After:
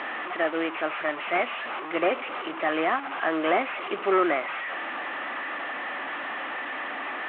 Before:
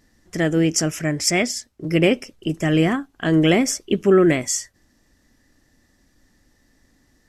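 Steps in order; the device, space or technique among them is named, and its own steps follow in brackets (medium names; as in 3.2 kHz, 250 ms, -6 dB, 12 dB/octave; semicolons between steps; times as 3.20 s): digital answering machine (band-pass 400–3000 Hz; one-bit delta coder 16 kbps, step -27 dBFS; cabinet simulation 420–3900 Hz, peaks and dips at 450 Hz -5 dB, 760 Hz +4 dB, 1.2 kHz +7 dB)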